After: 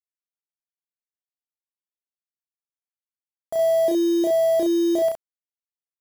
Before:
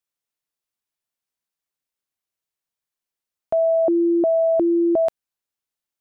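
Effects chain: bit-crush 5-bit; loudspeakers at several distances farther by 11 m -2 dB, 23 m -5 dB; gain -8.5 dB

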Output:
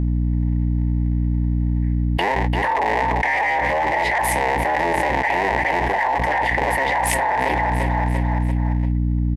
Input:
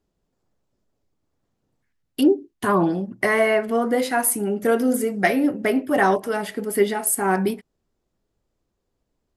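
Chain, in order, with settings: cycle switcher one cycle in 3, inverted; double band-pass 1300 Hz, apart 1.1 oct; in parallel at -7.5 dB: soft clip -29.5 dBFS, distortion -8 dB; on the sum: hum 60 Hz, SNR 17 dB; on a send: feedback echo 0.343 s, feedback 49%, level -19 dB; on the sum: fast leveller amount 100%

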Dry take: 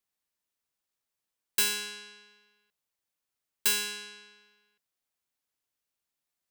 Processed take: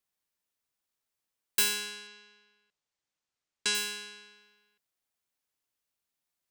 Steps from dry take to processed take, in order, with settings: 2.07–3.75 LPF 7700 Hz 24 dB/oct

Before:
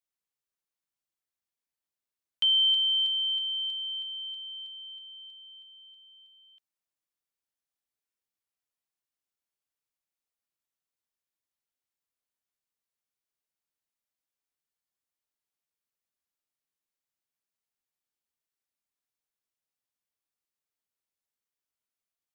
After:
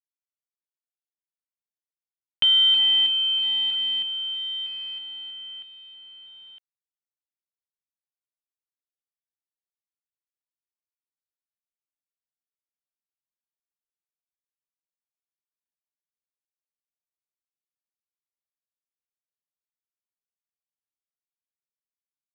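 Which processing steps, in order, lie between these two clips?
in parallel at 0 dB: compressor 16:1, threshold -35 dBFS, peak gain reduction 14 dB; on the sum: companded quantiser 4-bit; LPF 3200 Hz 24 dB/oct; gain +6 dB

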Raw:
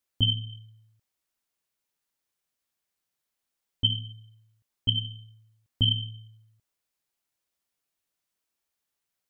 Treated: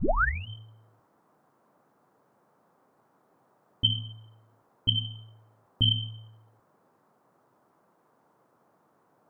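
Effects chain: tape start at the beginning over 0.48 s; notches 50/100/150/200/250 Hz; band noise 120–1200 Hz -67 dBFS

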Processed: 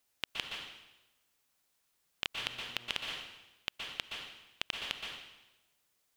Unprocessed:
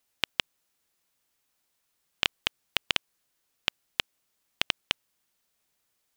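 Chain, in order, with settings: 2.37–2.89 buzz 120 Hz, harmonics 28, -58 dBFS; plate-style reverb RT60 1 s, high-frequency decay 0.95×, pre-delay 0.11 s, DRR 8.5 dB; limiter -11.5 dBFS, peak gain reduction 9 dB; gain -1 dB

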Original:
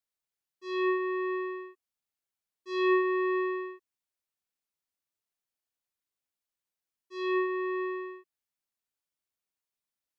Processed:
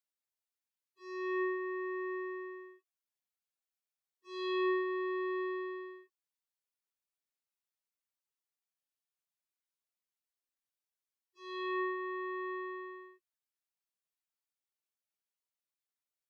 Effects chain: low shelf 340 Hz -7.5 dB; plain phase-vocoder stretch 1.6×; gain -2.5 dB

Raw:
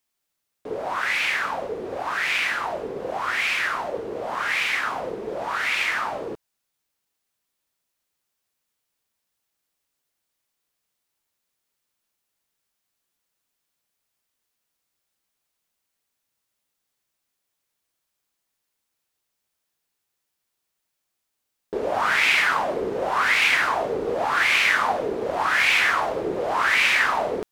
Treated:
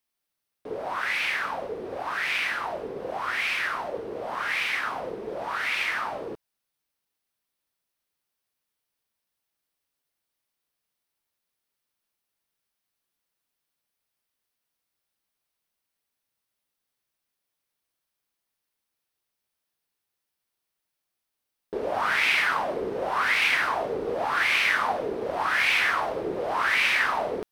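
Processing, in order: bell 7100 Hz -6.5 dB 0.3 oct; gain -3.5 dB

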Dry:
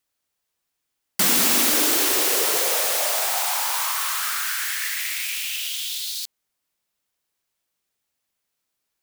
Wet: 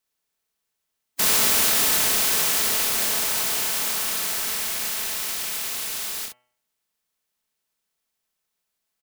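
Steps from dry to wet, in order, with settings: spectral contrast lowered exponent 0.1; comb 4.6 ms, depth 38%; de-hum 123.4 Hz, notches 25; on a send: early reflections 28 ms -4 dB, 65 ms -5.5 dB; on the sum: gain -3 dB

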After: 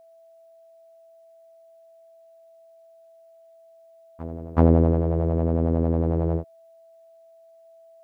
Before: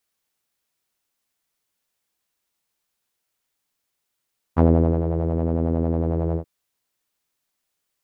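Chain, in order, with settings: whine 660 Hz -49 dBFS; reverse echo 0.378 s -18.5 dB

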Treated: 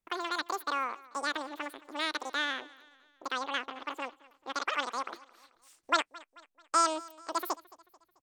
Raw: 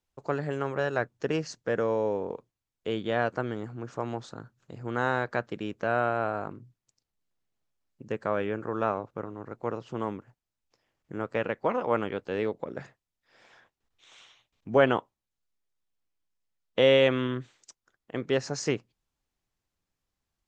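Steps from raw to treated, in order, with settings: wide varispeed 2.49×; feedback echo 0.219 s, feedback 47%, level -21.5 dB; gain -4.5 dB

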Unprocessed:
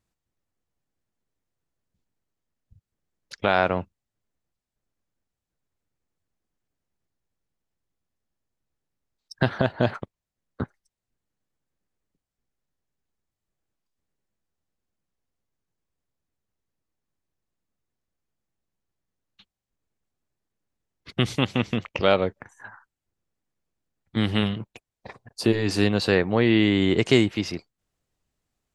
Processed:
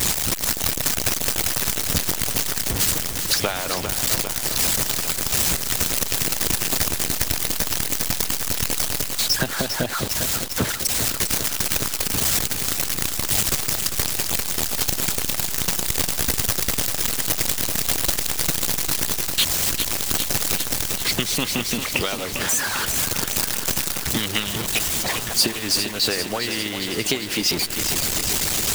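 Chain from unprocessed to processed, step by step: zero-crossing step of -25 dBFS; compressor, threshold -22 dBFS, peak gain reduction 10.5 dB; harmonic-percussive split harmonic -14 dB; vocal rider within 5 dB 0.5 s; high shelf 2500 Hz +11 dB; lo-fi delay 0.4 s, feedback 80%, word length 7-bit, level -7.5 dB; gain +7 dB

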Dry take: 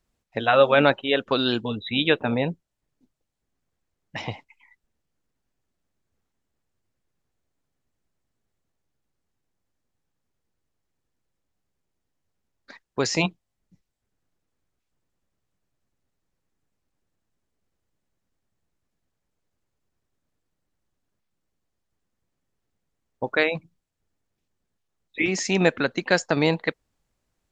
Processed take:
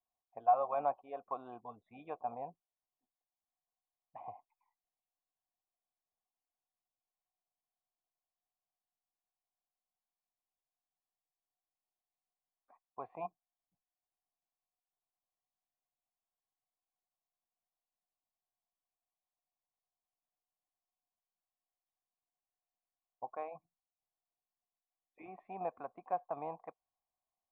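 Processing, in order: vocal tract filter a; gain -3 dB

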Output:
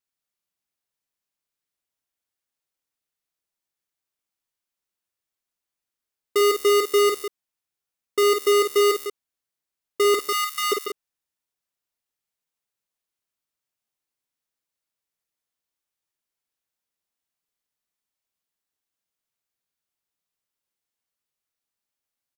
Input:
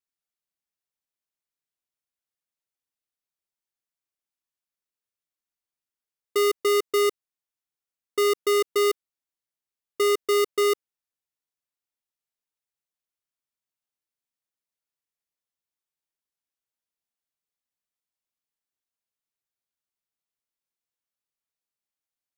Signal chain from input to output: 10.14–10.72 steep high-pass 1000 Hz 96 dB/oct; on a send: loudspeakers at several distances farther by 17 m -6 dB, 50 m -9 dB, 63 m -9 dB; on the sum: gain +2.5 dB

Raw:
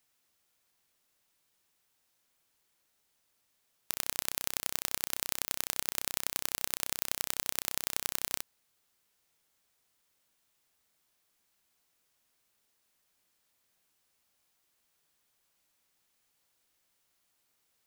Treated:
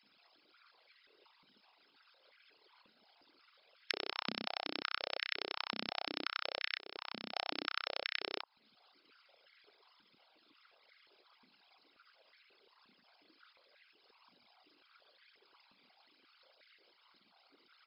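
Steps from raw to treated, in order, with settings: formant sharpening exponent 3; brick-wall FIR low-pass 5300 Hz; bands offset in time highs, lows 30 ms, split 800 Hz; 6.79–7.36 level quantiser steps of 19 dB; notch 1800 Hz, Q 7.1; compressor 3:1, threshold -53 dBFS, peak gain reduction 14.5 dB; stepped high-pass 5.6 Hz 220–1800 Hz; gain +12.5 dB

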